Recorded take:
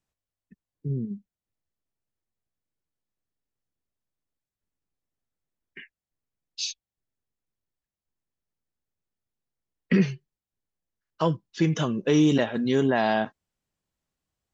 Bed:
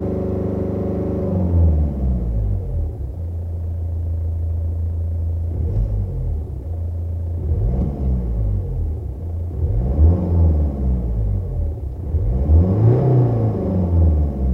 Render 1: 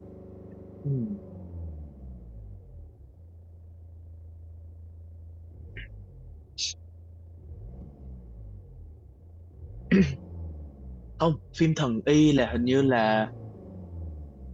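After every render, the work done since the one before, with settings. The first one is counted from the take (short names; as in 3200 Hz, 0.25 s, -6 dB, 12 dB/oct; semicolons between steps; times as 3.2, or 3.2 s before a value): add bed -24 dB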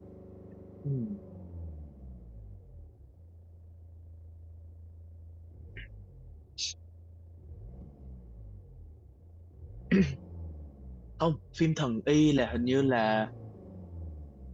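gain -4 dB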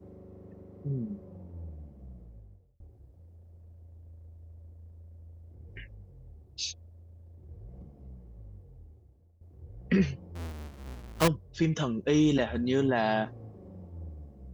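2.26–2.8 fade out; 8.51–9.41 fade out equal-power, to -15.5 dB; 10.35–11.28 half-waves squared off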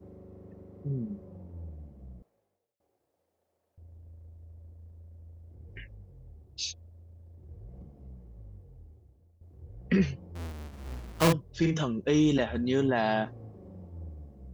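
2.22–3.78 Bessel high-pass 870 Hz; 10.68–11.79 doubler 48 ms -4 dB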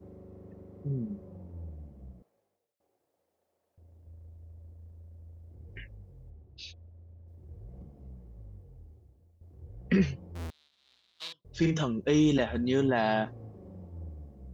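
2.11–4.07 low shelf 82 Hz -11.5 dB; 6.3–7.28 air absorption 290 m; 10.5–11.45 band-pass 3800 Hz, Q 5.4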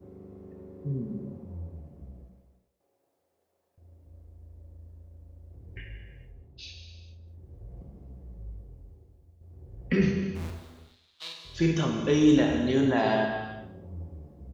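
echo 0.197 s -19 dB; non-linear reverb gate 0.48 s falling, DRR 1 dB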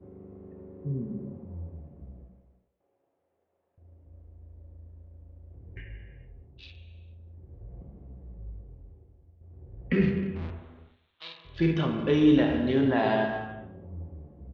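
Wiener smoothing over 9 samples; LPF 4000 Hz 24 dB/oct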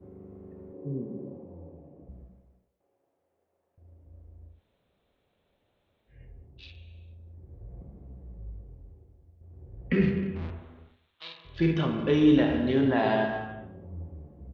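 0.73–2.09 speaker cabinet 150–3000 Hz, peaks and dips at 210 Hz -6 dB, 300 Hz +7 dB, 500 Hz +7 dB, 790 Hz +3 dB, 1400 Hz -7 dB, 2000 Hz -6 dB; 4.54–6.15 room tone, crossfade 0.16 s; 7.06–8.05 notch 2900 Hz, Q 14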